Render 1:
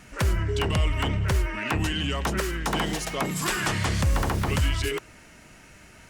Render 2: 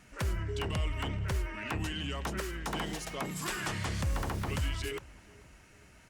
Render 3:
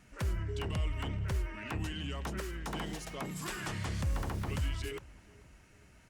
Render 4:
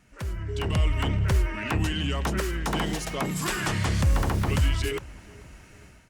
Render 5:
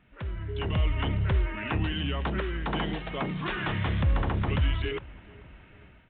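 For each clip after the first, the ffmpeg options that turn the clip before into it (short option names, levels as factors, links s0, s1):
-filter_complex "[0:a]asplit=2[s0][s1];[s1]adelay=435,lowpass=f=2000:p=1,volume=0.075,asplit=2[s2][s3];[s3]adelay=435,lowpass=f=2000:p=1,volume=0.55,asplit=2[s4][s5];[s5]adelay=435,lowpass=f=2000:p=1,volume=0.55,asplit=2[s6][s7];[s7]adelay=435,lowpass=f=2000:p=1,volume=0.55[s8];[s0][s2][s4][s6][s8]amix=inputs=5:normalize=0,volume=0.355"
-af "lowshelf=f=320:g=4,volume=0.596"
-af "dynaudnorm=f=390:g=3:m=3.55"
-af "volume=0.75" -ar 8000 -c:a pcm_mulaw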